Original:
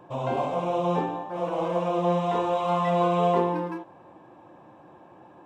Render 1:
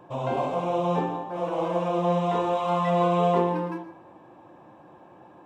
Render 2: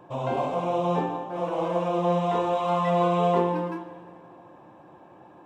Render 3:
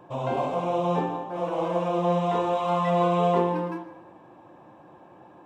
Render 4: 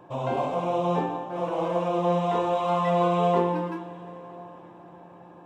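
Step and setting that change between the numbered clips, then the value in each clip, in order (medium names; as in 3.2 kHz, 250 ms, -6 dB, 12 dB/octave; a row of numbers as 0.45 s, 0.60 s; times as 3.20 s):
plate-style reverb, RT60: 0.51 s, 2.3 s, 1.1 s, 5.2 s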